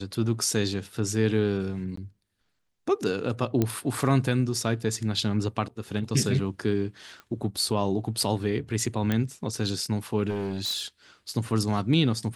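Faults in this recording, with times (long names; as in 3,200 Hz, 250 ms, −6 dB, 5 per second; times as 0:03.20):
0:01.96–0:01.97: drop-out 14 ms
0:03.62: click −11 dBFS
0:07.20: click −28 dBFS
0:09.12: click −13 dBFS
0:10.29–0:10.86: clipping −25.5 dBFS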